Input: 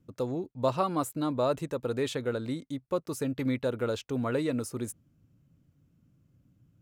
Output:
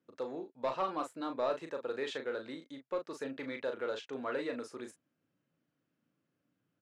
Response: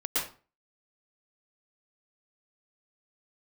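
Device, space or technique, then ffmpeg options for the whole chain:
intercom: -filter_complex "[0:a]highpass=410,lowpass=4500,equalizer=f=1700:t=o:w=0.35:g=5,asoftclip=type=tanh:threshold=0.0944,asplit=2[s0][s1];[s1]adelay=37,volume=0.473[s2];[s0][s2]amix=inputs=2:normalize=0,volume=0.631"

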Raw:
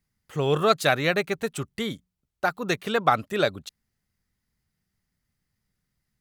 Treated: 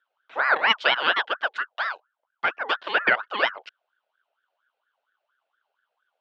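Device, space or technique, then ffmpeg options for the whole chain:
voice changer toy: -af "aeval=exprs='val(0)*sin(2*PI*1100*n/s+1100*0.45/4.3*sin(2*PI*4.3*n/s))':c=same,highpass=430,equalizer=f=620:t=q:w=4:g=4,equalizer=f=1500:t=q:w=4:g=10,equalizer=f=3100:t=q:w=4:g=7,lowpass=f=4100:w=0.5412,lowpass=f=4100:w=1.3066"

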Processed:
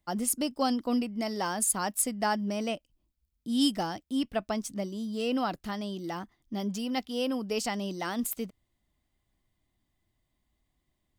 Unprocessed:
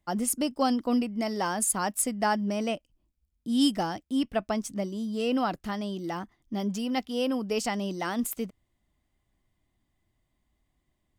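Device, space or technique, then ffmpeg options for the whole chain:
presence and air boost: -af "equalizer=f=4100:t=o:w=0.77:g=3.5,highshelf=f=12000:g=6,volume=0.75"

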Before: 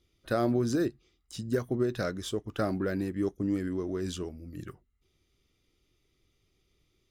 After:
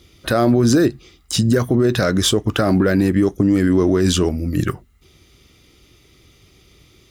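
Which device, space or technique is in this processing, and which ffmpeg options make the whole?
mastering chain: -af "highpass=46,equalizer=f=400:t=o:w=0.77:g=-2,acompressor=threshold=0.0282:ratio=2,alimiter=level_in=25.1:limit=0.891:release=50:level=0:latency=1,volume=0.531"

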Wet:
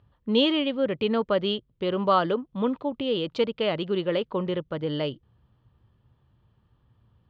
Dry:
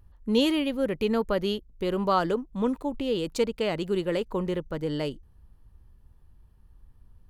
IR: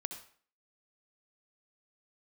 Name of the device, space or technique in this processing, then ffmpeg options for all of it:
guitar cabinet: -af "highpass=110,equalizer=f=120:t=q:w=4:g=9,equalizer=f=590:t=q:w=4:g=4,equalizer=f=1200:t=q:w=4:g=4,equalizer=f=3200:t=q:w=4:g=7,lowpass=f=4200:w=0.5412,lowpass=f=4200:w=1.3066"

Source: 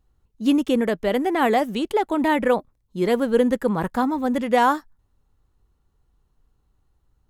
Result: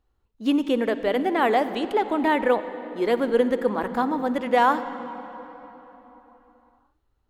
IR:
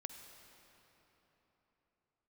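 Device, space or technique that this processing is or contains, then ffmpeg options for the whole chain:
filtered reverb send: -filter_complex "[0:a]asplit=2[s0][s1];[s1]highpass=f=160:w=0.5412,highpass=f=160:w=1.3066,lowpass=5100[s2];[1:a]atrim=start_sample=2205[s3];[s2][s3]afir=irnorm=-1:irlink=0,volume=1.78[s4];[s0][s4]amix=inputs=2:normalize=0,volume=0.447"

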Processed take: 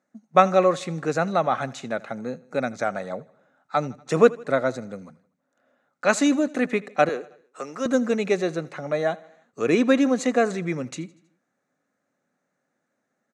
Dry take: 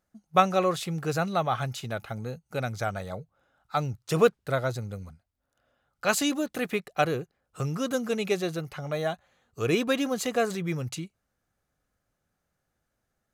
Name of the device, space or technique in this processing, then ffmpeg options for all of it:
television speaker: -filter_complex "[0:a]highpass=f=170:w=0.5412,highpass=f=170:w=1.3066,equalizer=f=260:t=q:w=4:g=7,equalizer=f=570:t=q:w=4:g=4,equalizer=f=1900:t=q:w=4:g=4,equalizer=f=3100:t=q:w=4:g=-9,equalizer=f=4900:t=q:w=4:g=-8,lowpass=f=7600:w=0.5412,lowpass=f=7600:w=1.3066,asettb=1/sr,asplit=3[s0][s1][s2];[s0]atrim=end=2.214[s3];[s1]atrim=start=2.21:end=2.77,asetpts=PTS-STARTPTS,afade=t=in:d=0.004:c=qsin,afade=t=out:st=0.556:d=0.004:c=qsin,bandreject=f=2900:w=11[s4];[s2]atrim=start=2.766[s5];[s3][s4]acrossfade=d=0.004:c1=hsin:c2=qsin[s6];[s6][s5]acrossfade=d=0.004:c1=qsin:c2=hsin,asettb=1/sr,asplit=3[s7][s8][s9];[s7]atrim=end=7.094[s10];[s8]atrim=start=7.09:end=7.86,asetpts=PTS-STARTPTS,afade=t=in:d=0.004:c=qsin,afade=t=out:st=0.766:d=0.004:c=qsin,highpass=470[s11];[s9]atrim=start=7.856[s12];[s10][s11]acrossfade=d=0.004:c1=hsin:c2=qsin[s13];[s13][s12]acrossfade=d=0.004:c1=qsin:c2=hsin,aecho=1:1:80|160|240|320:0.0794|0.0437|0.024|0.0132,volume=1.5"

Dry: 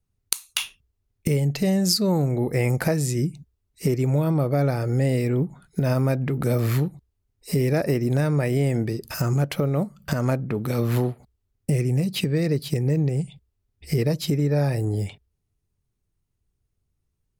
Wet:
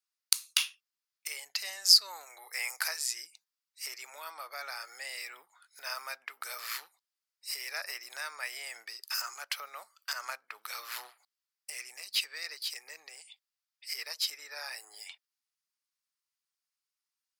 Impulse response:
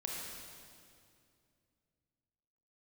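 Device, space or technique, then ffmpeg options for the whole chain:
headphones lying on a table: -filter_complex "[0:a]highpass=f=1100:w=0.5412,highpass=f=1100:w=1.3066,equalizer=f=4900:t=o:w=0.44:g=7.5,asettb=1/sr,asplit=3[s0][s1][s2];[s0]atrim=end=2.264[s3];[s1]atrim=start=2.26:end=2.98,asetpts=PTS-STARTPTS,afade=t=in:d=0.004:c=qsin,afade=t=out:st=0.716:d=0.004:c=qsin,bass=f=250:g=-13,treble=f=4000:g=4[s4];[s2]atrim=start=2.976[s5];[s3][s4]acrossfade=d=0.004:c1=hsin:c2=qsin[s6];[s6][s5]acrossfade=d=0.004:c1=qsin:c2=hsin,volume=0.708"

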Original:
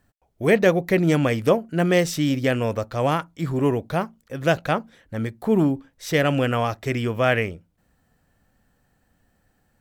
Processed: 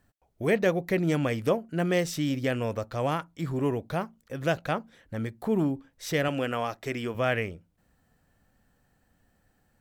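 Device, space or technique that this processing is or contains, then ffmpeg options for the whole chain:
parallel compression: -filter_complex "[0:a]asettb=1/sr,asplit=3[s0][s1][s2];[s0]atrim=end=6.284[s3];[s1]atrim=start=6.28:end=7.15,asetpts=PTS-STARTPTS,afade=t=in:d=0.004:c=qsin,afade=t=out:st=0.866:d=0.004:c=qsin,equalizer=f=78:w=0.99:g=-13.5[s4];[s2]atrim=start=7.146[s5];[s3][s4]acrossfade=d=0.004:c1=hsin:c2=qsin[s6];[s6][s5]acrossfade=d=0.004:c1=qsin:c2=hsin,asplit=2[s7][s8];[s8]acompressor=threshold=0.0251:ratio=6,volume=0.891[s9];[s7][s9]amix=inputs=2:normalize=0,volume=0.398"

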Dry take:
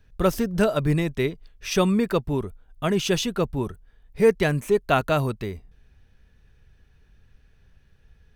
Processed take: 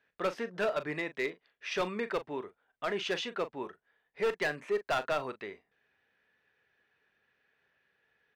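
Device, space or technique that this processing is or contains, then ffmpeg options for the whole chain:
megaphone: -filter_complex "[0:a]highpass=460,lowpass=3300,equalizer=f=1900:t=o:w=0.56:g=5.5,asoftclip=type=hard:threshold=0.106,asplit=2[s0][s1];[s1]adelay=39,volume=0.224[s2];[s0][s2]amix=inputs=2:normalize=0,volume=0.531"

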